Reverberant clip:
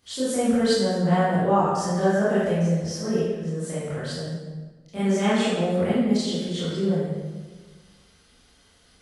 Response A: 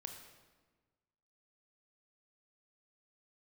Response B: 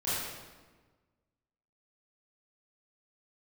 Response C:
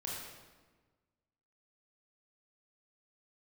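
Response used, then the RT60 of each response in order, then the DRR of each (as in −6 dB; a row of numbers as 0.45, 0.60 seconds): B; 1.4, 1.4, 1.4 seconds; 4.0, −12.5, −4.5 decibels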